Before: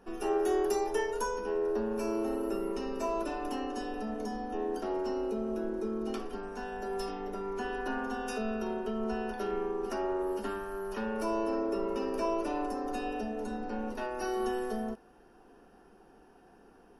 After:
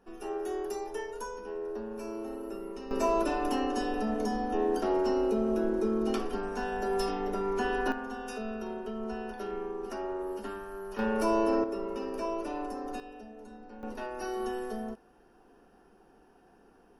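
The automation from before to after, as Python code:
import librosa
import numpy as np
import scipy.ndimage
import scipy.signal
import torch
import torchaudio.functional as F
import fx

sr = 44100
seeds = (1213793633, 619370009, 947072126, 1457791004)

y = fx.gain(x, sr, db=fx.steps((0.0, -6.0), (2.91, 5.5), (7.92, -3.0), (10.99, 5.0), (11.64, -2.5), (13.0, -11.5), (13.83, -2.0)))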